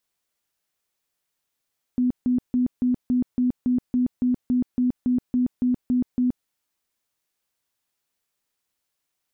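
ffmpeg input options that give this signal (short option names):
-f lavfi -i "aevalsrc='0.133*sin(2*PI*249*mod(t,0.28))*lt(mod(t,0.28),31/249)':d=4.48:s=44100"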